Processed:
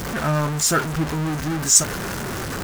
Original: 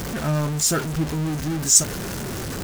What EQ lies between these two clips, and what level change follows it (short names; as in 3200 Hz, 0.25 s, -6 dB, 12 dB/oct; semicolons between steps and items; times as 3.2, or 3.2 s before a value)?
dynamic EQ 1300 Hz, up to +7 dB, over -41 dBFS, Q 0.7; 0.0 dB